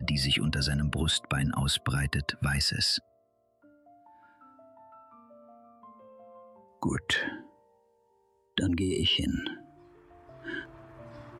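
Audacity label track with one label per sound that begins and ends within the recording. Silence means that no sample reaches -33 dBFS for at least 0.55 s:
6.830000	7.350000	sound
8.580000	9.540000	sound
10.470000	10.620000	sound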